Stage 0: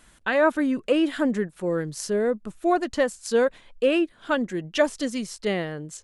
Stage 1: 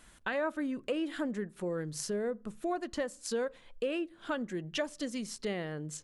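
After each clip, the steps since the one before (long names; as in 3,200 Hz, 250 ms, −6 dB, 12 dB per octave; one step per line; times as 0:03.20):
downward compressor 2.5 to 1, threshold −32 dBFS, peak gain reduction 11.5 dB
on a send at −22.5 dB: convolution reverb RT60 0.50 s, pre-delay 3 ms
on the sum: level −3 dB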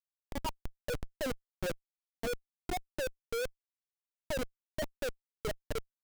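spectral peaks only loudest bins 8
LFO wah 2.9 Hz 470–1,100 Hz, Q 11
comparator with hysteresis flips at −47.5 dBFS
level +13.5 dB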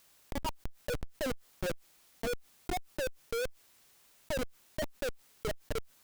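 envelope flattener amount 50%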